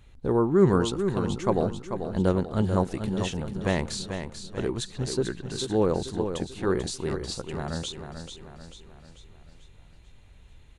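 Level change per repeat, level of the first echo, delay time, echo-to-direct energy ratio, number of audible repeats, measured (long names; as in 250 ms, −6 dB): −6.5 dB, −8.0 dB, 440 ms, −7.0 dB, 5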